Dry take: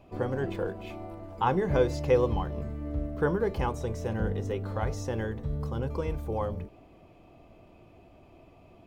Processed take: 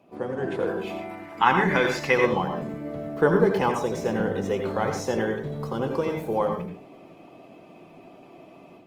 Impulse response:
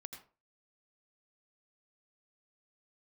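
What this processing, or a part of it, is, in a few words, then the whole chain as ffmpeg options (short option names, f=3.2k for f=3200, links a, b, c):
far-field microphone of a smart speaker: -filter_complex "[0:a]asettb=1/sr,asplit=3[a][b][c];[a]atrim=end=1.014[d];[b]atrim=start=1.01:end=2.24,asetpts=PTS-STARTPTS,afade=t=in:d=0.004:c=qsin,afade=t=out:st=1.226:d=0.004:c=qsin,equalizer=f=125:t=o:w=1:g=-5,equalizer=f=500:t=o:w=1:g=-9,equalizer=f=2k:t=o:w=1:g=11[e];[c]atrim=start=2.236[f];[d][e]acrossfade=d=0.004:c1=hsin:c2=qsin[g];[g][f]acrossfade=d=0.004:c1=qsin:c2=hsin[h];[1:a]atrim=start_sample=2205[i];[h][i]afir=irnorm=-1:irlink=0,highpass=f=160:w=0.5412,highpass=f=160:w=1.3066,dynaudnorm=f=350:g=3:m=7.5dB,volume=5.5dB" -ar 48000 -c:a libopus -b:a 24k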